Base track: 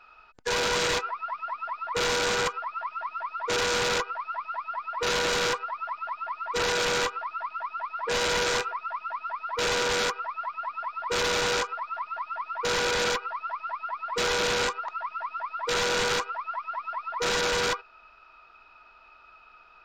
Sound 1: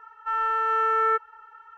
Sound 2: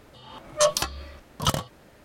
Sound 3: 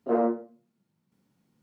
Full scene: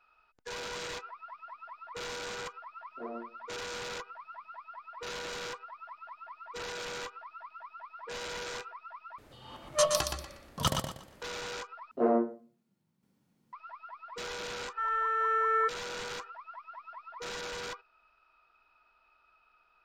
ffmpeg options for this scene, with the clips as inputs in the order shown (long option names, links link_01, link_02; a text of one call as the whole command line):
ffmpeg -i bed.wav -i cue0.wav -i cue1.wav -i cue2.wav -filter_complex "[3:a]asplit=2[link_01][link_02];[0:a]volume=-13.5dB[link_03];[2:a]aecho=1:1:120|240|360|480:0.531|0.149|0.0416|0.0117[link_04];[1:a]aecho=1:1:2.8:0.66[link_05];[link_03]asplit=3[link_06][link_07][link_08];[link_06]atrim=end=9.184[link_09];[link_04]atrim=end=2.04,asetpts=PTS-STARTPTS,volume=-5.5dB[link_10];[link_07]atrim=start=11.216:end=11.914[link_11];[link_02]atrim=end=1.62,asetpts=PTS-STARTPTS,volume=-2dB[link_12];[link_08]atrim=start=13.526[link_13];[link_01]atrim=end=1.62,asetpts=PTS-STARTPTS,volume=-17.5dB,afade=type=in:duration=0.004:curve=hsin,afade=type=out:start_time=1.616:duration=0.004:curve=hsin,adelay=2910[link_14];[link_05]atrim=end=1.77,asetpts=PTS-STARTPTS,volume=-6.5dB,afade=type=in:duration=0.004:curve=hsin,afade=type=out:start_time=1.766:duration=0.004:curve=hsin,adelay=14510[link_15];[link_09][link_10]acrossfade=duration=0.004:curve1=hsin:curve2=hsin[link_16];[link_16][link_11]acrossfade=duration=0.004:curve1=hsin:curve2=hsin[link_17];[link_17][link_12]acrossfade=duration=0.004:curve1=hsin:curve2=hsin[link_18];[link_18][link_13]acrossfade=duration=0.004:curve1=hsin:curve2=hsin[link_19];[link_19][link_14][link_15]amix=inputs=3:normalize=0" out.wav